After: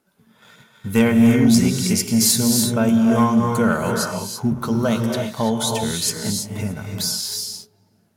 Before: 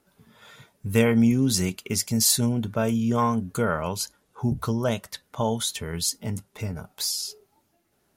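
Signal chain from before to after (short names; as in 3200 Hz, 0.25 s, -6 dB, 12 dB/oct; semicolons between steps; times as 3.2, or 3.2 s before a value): low shelf 73 Hz -12 dB; small resonant body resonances 210/1500 Hz, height 6 dB; on a send: darkening echo 0.431 s, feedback 59%, low-pass 1100 Hz, level -23.5 dB; on the sum: non-linear reverb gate 0.36 s rising, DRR 2.5 dB; sample leveller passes 1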